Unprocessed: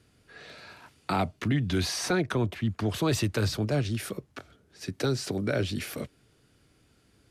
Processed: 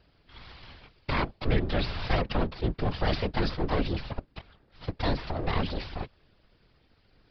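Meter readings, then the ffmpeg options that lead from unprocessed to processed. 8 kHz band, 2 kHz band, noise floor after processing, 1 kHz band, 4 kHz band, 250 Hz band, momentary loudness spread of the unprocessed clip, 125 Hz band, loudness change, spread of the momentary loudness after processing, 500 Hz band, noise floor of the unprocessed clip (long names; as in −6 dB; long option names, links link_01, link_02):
below −25 dB, −0.5 dB, −66 dBFS, +2.0 dB, −2.0 dB, −3.0 dB, 19 LU, −2.0 dB, −1.5 dB, 19 LU, −1.5 dB, −65 dBFS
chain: -af "aeval=exprs='abs(val(0))':channel_layout=same,afftfilt=real='hypot(re,im)*cos(2*PI*random(0))':imag='hypot(re,im)*sin(2*PI*random(1))':win_size=512:overlap=0.75,aresample=11025,aresample=44100,volume=8dB"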